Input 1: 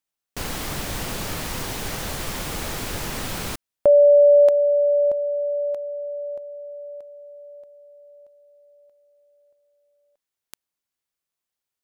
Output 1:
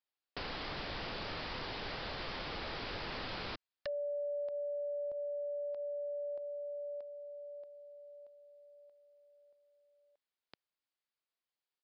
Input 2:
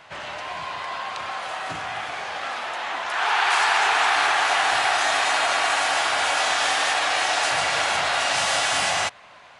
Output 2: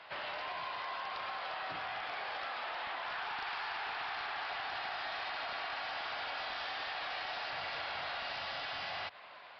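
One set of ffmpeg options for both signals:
ffmpeg -i in.wav -filter_complex "[0:a]bass=frequency=250:gain=-10,treble=frequency=4000:gain=1,acrossover=split=150[link_01][link_02];[link_02]acompressor=threshold=-33dB:ratio=10:attack=18:release=150:knee=2.83:detection=peak[link_03];[link_01][link_03]amix=inputs=2:normalize=0,aresample=11025,aeval=exprs='0.0422*(abs(mod(val(0)/0.0422+3,4)-2)-1)':channel_layout=same,aresample=44100,volume=-5dB" out.wav

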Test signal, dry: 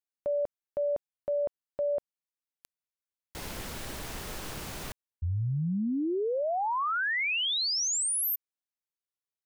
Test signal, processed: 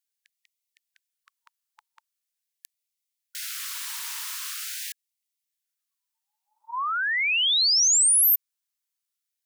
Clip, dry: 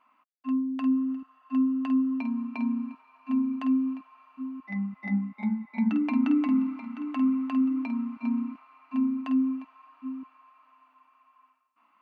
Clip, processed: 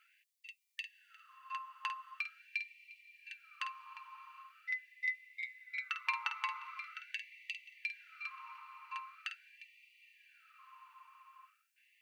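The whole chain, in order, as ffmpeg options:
ffmpeg -i in.wav -af "highshelf=frequency=2400:gain=11,afftfilt=real='re*gte(b*sr/1024,820*pow(1900/820,0.5+0.5*sin(2*PI*0.43*pts/sr)))':imag='im*gte(b*sr/1024,820*pow(1900/820,0.5+0.5*sin(2*PI*0.43*pts/sr)))':win_size=1024:overlap=0.75" out.wav

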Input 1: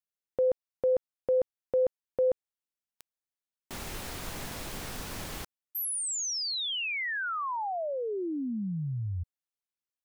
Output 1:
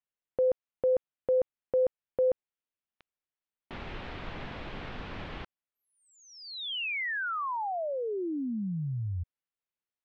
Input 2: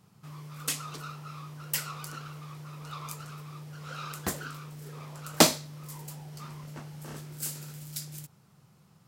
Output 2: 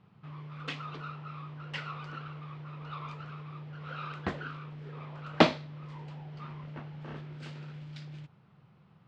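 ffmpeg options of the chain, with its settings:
ffmpeg -i in.wav -af "lowpass=frequency=3300:width=0.5412,lowpass=frequency=3300:width=1.3066" out.wav

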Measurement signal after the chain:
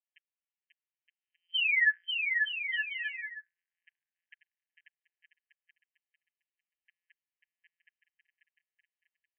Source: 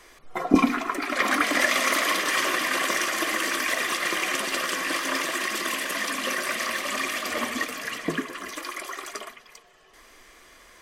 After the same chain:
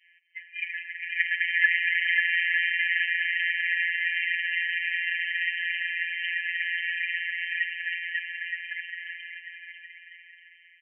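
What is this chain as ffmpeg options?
ffmpeg -i in.wav -af "adynamicequalizer=threshold=0.00891:dfrequency=1600:dqfactor=2.3:tfrequency=1600:tqfactor=2.3:attack=5:release=100:ratio=0.375:range=3.5:mode=boostabove:tftype=bell,aecho=1:1:540|918|1183|1368|1497:0.631|0.398|0.251|0.158|0.1,afftfilt=real='hypot(re,im)*cos(PI*b)':imag='0':win_size=1024:overlap=0.75,aresample=8000,aresample=44100,afftfilt=real='re*eq(mod(floor(b*sr/1024/1600),2),1)':imag='im*eq(mod(floor(b*sr/1024/1600),2),1)':win_size=1024:overlap=0.75" out.wav

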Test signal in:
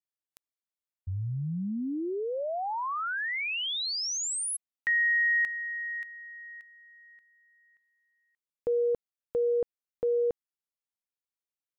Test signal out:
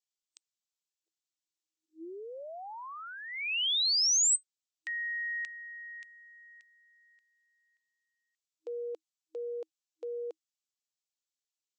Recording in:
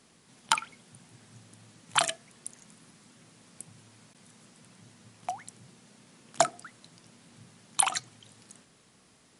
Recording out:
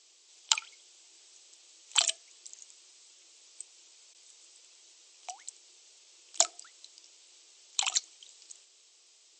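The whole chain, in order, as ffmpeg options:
ffmpeg -i in.wav -af "afftfilt=real='re*between(b*sr/4096,320,8200)':imag='im*between(b*sr/4096,320,8200)':win_size=4096:overlap=0.75,aexciter=amount=7.2:drive=2.1:freq=2500,volume=-11dB" out.wav

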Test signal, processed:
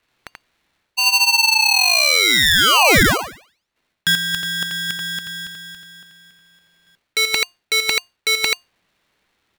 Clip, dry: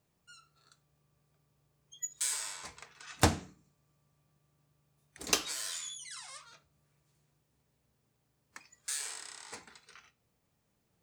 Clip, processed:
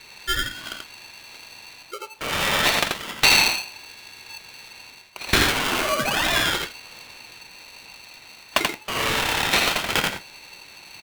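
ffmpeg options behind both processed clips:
ffmpeg -i in.wav -af "areverse,acompressor=threshold=-49dB:ratio=6,areverse,apsyclip=33dB,crystalizer=i=3:c=0,lowpass=frequency=3100:width_type=q:width=0.5098,lowpass=frequency=3100:width_type=q:width=0.6013,lowpass=frequency=3100:width_type=q:width=0.9,lowpass=frequency=3100:width_type=q:width=2.563,afreqshift=-3700,aecho=1:1:84:0.668,aeval=exprs='val(0)*sgn(sin(2*PI*880*n/s))':channel_layout=same,volume=-1dB" out.wav

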